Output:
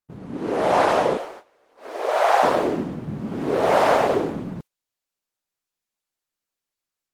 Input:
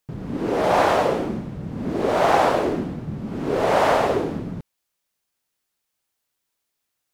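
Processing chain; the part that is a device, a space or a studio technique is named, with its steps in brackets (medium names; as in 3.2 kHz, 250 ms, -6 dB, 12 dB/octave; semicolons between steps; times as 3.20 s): 1.17–2.43 s: inverse Chebyshev high-pass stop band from 150 Hz, stop band 60 dB; video call (high-pass 160 Hz 6 dB/octave; level rider gain up to 7.5 dB; gate -36 dBFS, range -14 dB; trim -3 dB; Opus 20 kbps 48 kHz)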